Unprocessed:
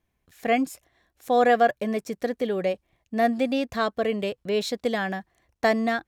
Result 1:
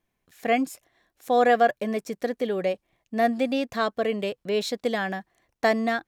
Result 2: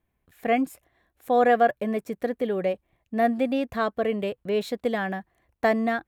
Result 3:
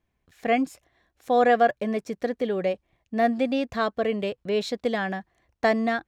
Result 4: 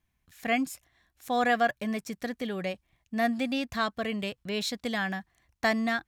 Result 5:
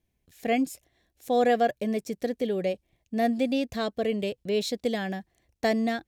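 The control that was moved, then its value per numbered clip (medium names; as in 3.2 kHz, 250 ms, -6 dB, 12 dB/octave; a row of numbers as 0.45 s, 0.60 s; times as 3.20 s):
peaking EQ, frequency: 67 Hz, 5.6 kHz, 15 kHz, 470 Hz, 1.2 kHz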